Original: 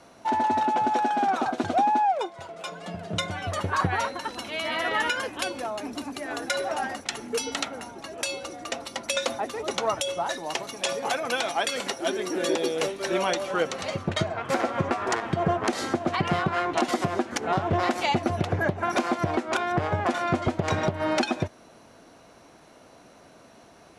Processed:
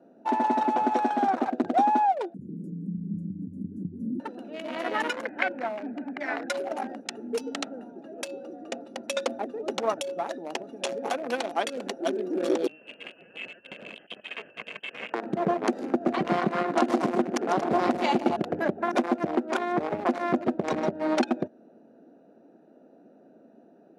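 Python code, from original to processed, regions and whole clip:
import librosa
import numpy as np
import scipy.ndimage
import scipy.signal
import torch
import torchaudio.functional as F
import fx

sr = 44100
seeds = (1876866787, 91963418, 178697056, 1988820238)

y = fx.chain(x, sr, fx.cheby2_bandstop(low_hz=640.0, high_hz=3900.0, order=4, stop_db=60),
    fx.high_shelf(hz=4700.0, db=-9.5),
    fx.env_flatten(amount_pct=70), at=(2.34, 4.2))
y = fx.chain(y, sr, fx.lowpass_res(hz=2000.0, q=8.0),
    fx.comb(ms=1.3, depth=0.39), at=(5.25, 6.48))
y = fx.chain(y, sr, fx.lower_of_two(delay_ms=1.9),
    fx.over_compress(threshold_db=-31.0, ratio=-0.5),
    fx.freq_invert(carrier_hz=3200), at=(12.67, 15.14))
y = fx.chain(y, sr, fx.highpass(hz=55.0, slope=12),
    fx.echo_multitap(ms=(126, 148, 233, 826), db=(-17.0, -8.5, -8.5, -11.0)), at=(15.88, 18.37))
y = fx.wiener(y, sr, points=41)
y = scipy.signal.sosfilt(scipy.signal.cheby1(3, 1.0, 220.0, 'highpass', fs=sr, output='sos'), y)
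y = fx.tilt_shelf(y, sr, db=3.5, hz=1400.0)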